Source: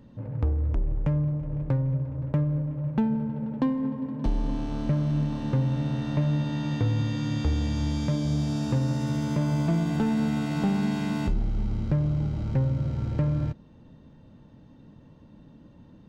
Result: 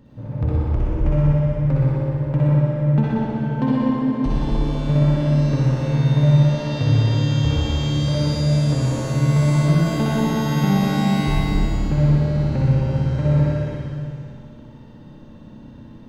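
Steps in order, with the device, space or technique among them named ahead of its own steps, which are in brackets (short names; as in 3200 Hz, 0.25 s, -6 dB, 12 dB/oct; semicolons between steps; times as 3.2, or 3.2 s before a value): tunnel (flutter echo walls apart 10.6 m, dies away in 1.4 s; reverb RT60 2.4 s, pre-delay 48 ms, DRR -6 dB); gain +1 dB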